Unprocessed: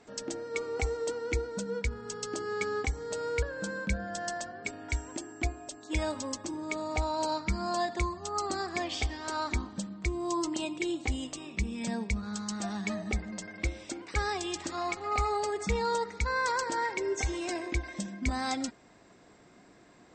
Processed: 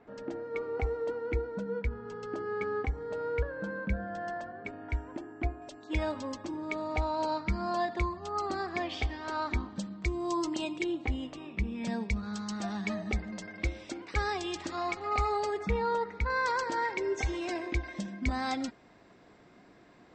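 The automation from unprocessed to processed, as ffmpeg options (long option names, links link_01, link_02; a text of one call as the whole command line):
ffmpeg -i in.wav -af "asetnsamples=nb_out_samples=441:pad=0,asendcmd='5.62 lowpass f 3400;9.76 lowpass f 5600;10.84 lowpass f 2600;11.85 lowpass f 5000;15.59 lowpass f 2500;16.3 lowpass f 4500',lowpass=1800" out.wav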